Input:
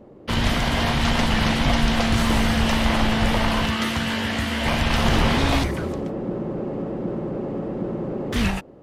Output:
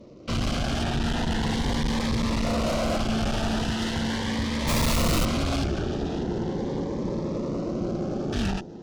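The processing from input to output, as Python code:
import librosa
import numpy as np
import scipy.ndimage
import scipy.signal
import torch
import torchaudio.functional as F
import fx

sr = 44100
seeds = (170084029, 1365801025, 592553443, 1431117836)

y = fx.cvsd(x, sr, bps=32000)
y = fx.lowpass(y, sr, hz=4100.0, slope=12, at=(0.83, 1.49))
y = fx.peak_eq(y, sr, hz=600.0, db=13.5, octaves=1.2, at=(2.44, 2.97))
y = fx.echo_feedback(y, sr, ms=594, feedback_pct=43, wet_db=-14)
y = fx.tube_stage(y, sr, drive_db=26.0, bias=0.75)
y = fx.quant_companded(y, sr, bits=2, at=(4.67, 5.24), fade=0.02)
y = fx.dynamic_eq(y, sr, hz=2300.0, q=1.1, threshold_db=-47.0, ratio=4.0, max_db=-5)
y = fx.notch_cascade(y, sr, direction='rising', hz=0.4)
y = y * 10.0 ** (4.5 / 20.0)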